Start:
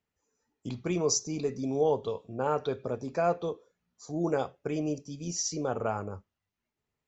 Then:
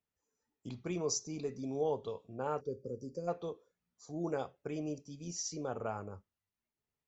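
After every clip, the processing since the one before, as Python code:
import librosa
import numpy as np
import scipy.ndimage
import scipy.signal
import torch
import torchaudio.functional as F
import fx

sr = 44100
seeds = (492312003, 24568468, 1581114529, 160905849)

y = fx.spec_box(x, sr, start_s=2.61, length_s=0.67, low_hz=580.0, high_hz=4500.0, gain_db=-27)
y = y * 10.0 ** (-7.5 / 20.0)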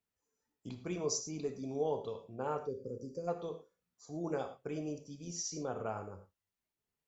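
y = fx.rev_gated(x, sr, seeds[0], gate_ms=130, shape='flat', drr_db=7.5)
y = y * 10.0 ** (-1.0 / 20.0)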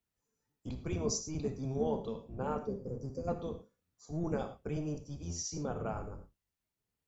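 y = fx.octave_divider(x, sr, octaves=1, level_db=4.0)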